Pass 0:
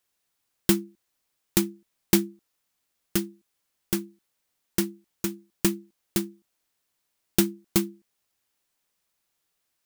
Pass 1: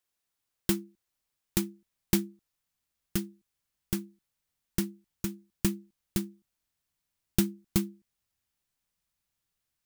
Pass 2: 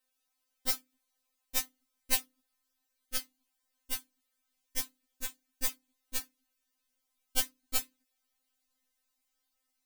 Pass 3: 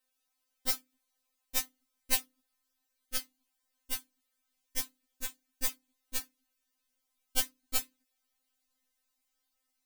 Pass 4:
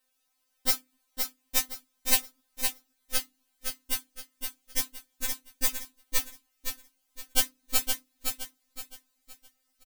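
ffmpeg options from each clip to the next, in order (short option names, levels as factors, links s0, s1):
-af "asubboost=boost=3.5:cutoff=190,volume=0.473"
-af "afftfilt=real='re*3.46*eq(mod(b,12),0)':imag='im*3.46*eq(mod(b,12),0)':win_size=2048:overlap=0.75,volume=1.68"
-af anull
-af "aecho=1:1:517|1034|1551|2068:0.531|0.175|0.0578|0.0191,volume=1.88"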